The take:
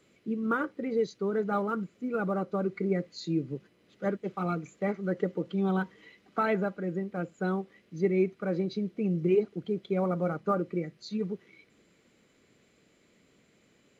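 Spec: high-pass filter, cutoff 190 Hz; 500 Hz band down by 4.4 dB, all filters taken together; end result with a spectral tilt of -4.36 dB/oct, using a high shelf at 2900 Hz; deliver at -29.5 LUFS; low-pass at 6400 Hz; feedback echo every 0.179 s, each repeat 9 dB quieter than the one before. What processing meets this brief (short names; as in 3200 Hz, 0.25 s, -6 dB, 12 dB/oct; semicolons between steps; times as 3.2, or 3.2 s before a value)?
HPF 190 Hz; LPF 6400 Hz; bell 500 Hz -5.5 dB; high shelf 2900 Hz -5.5 dB; feedback echo 0.179 s, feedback 35%, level -9 dB; gain +5 dB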